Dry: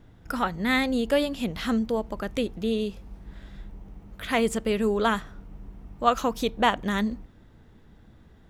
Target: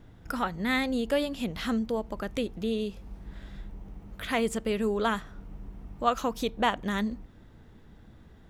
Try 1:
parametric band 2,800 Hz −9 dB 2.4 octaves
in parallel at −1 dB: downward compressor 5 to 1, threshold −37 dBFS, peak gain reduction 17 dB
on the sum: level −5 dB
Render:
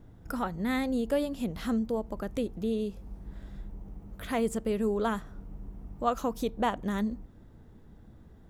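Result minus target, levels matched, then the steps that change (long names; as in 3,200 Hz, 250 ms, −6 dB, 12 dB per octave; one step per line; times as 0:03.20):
2,000 Hz band −5.5 dB
remove: parametric band 2,800 Hz −9 dB 2.4 octaves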